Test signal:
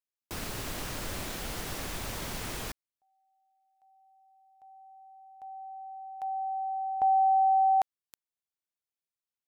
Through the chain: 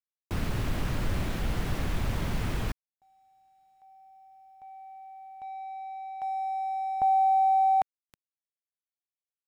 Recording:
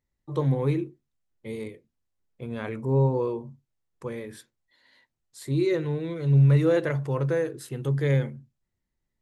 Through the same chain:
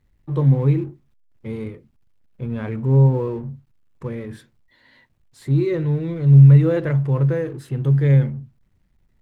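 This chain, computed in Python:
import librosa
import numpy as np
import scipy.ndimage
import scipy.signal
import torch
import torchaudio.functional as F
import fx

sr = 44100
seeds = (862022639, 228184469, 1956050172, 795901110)

y = fx.law_mismatch(x, sr, coded='mu')
y = fx.bass_treble(y, sr, bass_db=10, treble_db=-10)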